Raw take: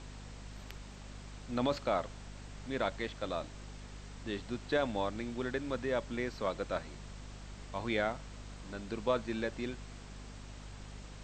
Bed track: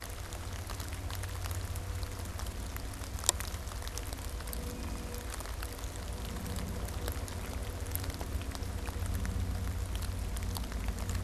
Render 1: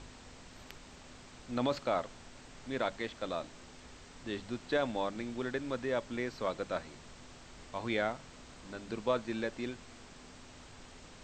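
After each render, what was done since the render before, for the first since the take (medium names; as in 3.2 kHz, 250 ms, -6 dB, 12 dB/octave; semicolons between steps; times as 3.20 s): de-hum 50 Hz, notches 4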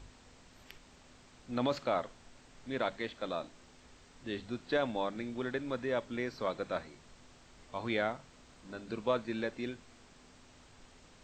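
noise print and reduce 6 dB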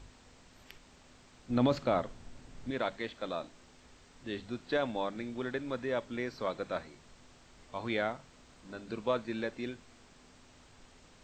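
1.50–2.71 s: bass shelf 340 Hz +10 dB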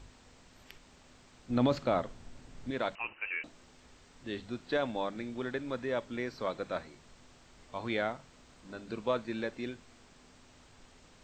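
2.95–3.44 s: frequency inversion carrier 2.9 kHz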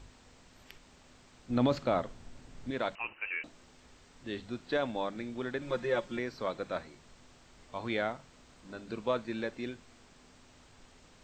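5.61–6.19 s: comb 5.6 ms, depth 97%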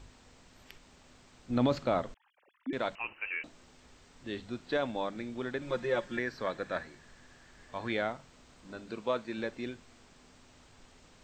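2.14–2.73 s: formants replaced by sine waves; 6.00–7.92 s: peaking EQ 1.7 kHz +13.5 dB 0.22 oct; 8.87–9.38 s: bass shelf 120 Hz -10 dB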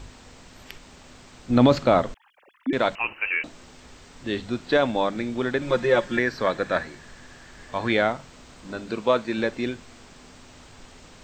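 trim +11 dB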